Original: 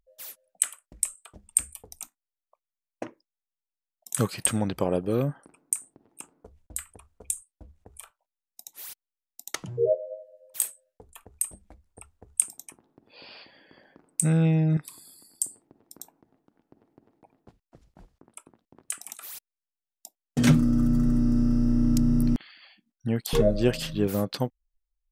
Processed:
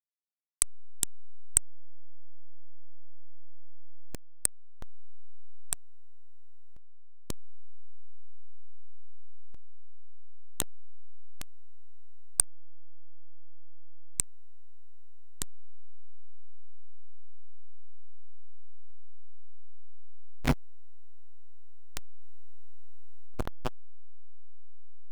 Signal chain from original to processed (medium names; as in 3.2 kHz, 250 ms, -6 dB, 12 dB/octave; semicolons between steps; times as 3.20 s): block-companded coder 5-bit; Chebyshev shaper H 7 -13 dB, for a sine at -1.5 dBFS; hysteresis with a dead band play -15 dBFS